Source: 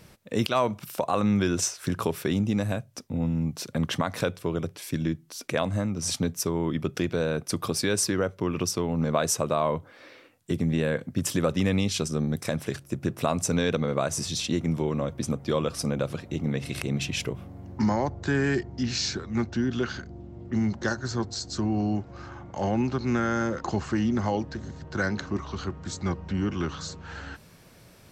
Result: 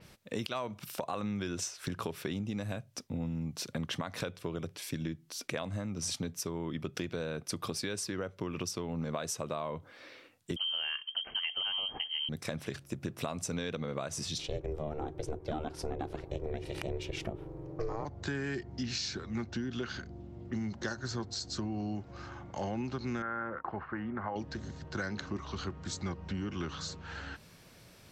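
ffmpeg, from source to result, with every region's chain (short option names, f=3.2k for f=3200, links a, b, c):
-filter_complex "[0:a]asettb=1/sr,asplit=3[a][b][c];[a]atrim=end=10.564[d];[b]atrim=start=10.56:end=12.29,asetpts=PTS-STARTPTS,afade=t=in:d=0.004:c=qsin,afade=t=out:st=1.726:d=0.004:c=qsin,aemphasis=mode=production:type=75kf,lowpass=f=2.8k:t=q:w=0.5098,lowpass=f=2.8k:t=q:w=0.6013,lowpass=f=2.8k:t=q:w=0.9,lowpass=f=2.8k:t=q:w=2.563,afreqshift=-3300[e];[c]atrim=start=12.286[f];[d][e]acrossfade=d=0.004:c1=hsin:c2=qsin[g];[g][f]acrossfade=d=0.004:c1=qsin:c2=hsin,asettb=1/sr,asplit=3[h][i][j];[h]atrim=end=14.384[k];[i]atrim=start=14.38:end=18.05,asetpts=PTS-STARTPTS,afade=t=in:d=0.004:c=qsin,afade=t=out:st=3.666:d=0.004:c=qsin,tiltshelf=f=1.4k:g=5.5,bandreject=f=50:t=h:w=6,bandreject=f=100:t=h:w=6,bandreject=f=150:t=h:w=6,bandreject=f=200:t=h:w=6,bandreject=f=250:t=h:w=6,aeval=exprs='val(0)*sin(2*PI*230*n/s)':c=same[l];[j]atrim=start=18.046[m];[k][l]acrossfade=d=0.004:c1=hsin:c2=qsin[n];[n][m]acrossfade=d=0.004:c1=qsin:c2=hsin,asettb=1/sr,asplit=3[o][p][q];[o]atrim=end=23.224[r];[p]atrim=start=23.22:end=24.36,asetpts=PTS-STARTPTS,afade=t=in:d=0.004:c=qsin,afade=t=out:st=1.136:d=0.004:c=qsin,agate=range=-33dB:threshold=-35dB:ratio=3:release=100:detection=peak,lowpass=f=1.5k:w=0.5412,lowpass=f=1.5k:w=1.3066,tiltshelf=f=840:g=-9.5[s];[q]atrim=start=24.356[t];[r][s]acrossfade=d=0.004:c1=hsin:c2=qsin[u];[u][t]acrossfade=d=0.004:c1=qsin:c2=hsin,equalizer=f=3.7k:w=0.61:g=4,acompressor=threshold=-28dB:ratio=5,adynamicequalizer=threshold=0.00398:dfrequency=4900:dqfactor=0.7:tfrequency=4900:tqfactor=0.7:attack=5:release=100:ratio=0.375:range=2:mode=cutabove:tftype=highshelf,volume=-4.5dB"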